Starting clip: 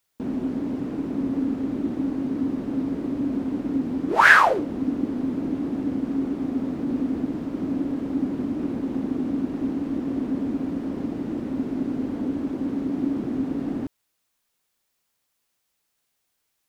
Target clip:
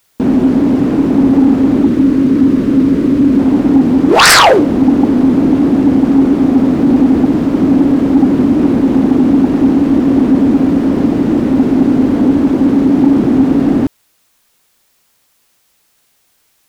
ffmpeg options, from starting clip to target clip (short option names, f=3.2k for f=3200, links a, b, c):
-filter_complex "[0:a]aeval=exprs='0.891*sin(PI/2*5.62*val(0)/0.891)':c=same,asettb=1/sr,asplit=3[a][b][c];[a]atrim=end=1.854[d];[b]atrim=start=1.85:end=3.39,asetpts=PTS-STARTPTS,afade=t=in:d=0.004:c=qsin,afade=t=out:st=1.536:d=0.004:c=qsin,equalizer=f=780:t=o:w=0.57:g=-11[e];[c]atrim=start=3.386[f];[d][e]acrossfade=d=0.004:c1=hsin:c2=qsin[g];[g][f]acrossfade=d=0.004:c1=qsin:c2=hsin,volume=-1dB"